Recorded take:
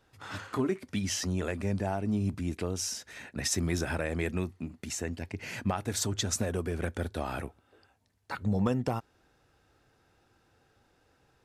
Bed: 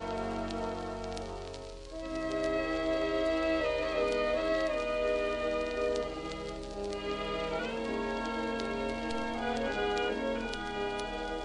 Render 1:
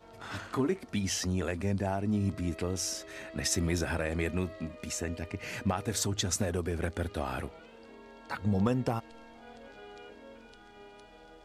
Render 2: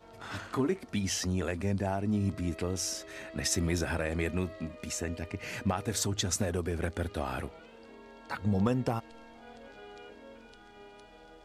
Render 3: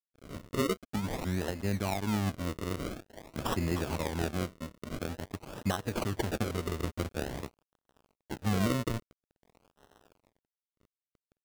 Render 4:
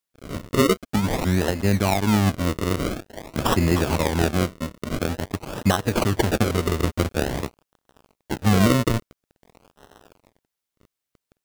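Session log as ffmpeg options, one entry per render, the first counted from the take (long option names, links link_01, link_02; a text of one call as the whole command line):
ffmpeg -i in.wav -i bed.wav -filter_complex "[1:a]volume=-17.5dB[link_01];[0:a][link_01]amix=inputs=2:normalize=0" out.wav
ffmpeg -i in.wav -af anull out.wav
ffmpeg -i in.wav -af "acrusher=samples=37:mix=1:aa=0.000001:lfo=1:lforange=37:lforate=0.48,aeval=exprs='sgn(val(0))*max(abs(val(0))-0.00562,0)':channel_layout=same" out.wav
ffmpeg -i in.wav -af "volume=11.5dB" out.wav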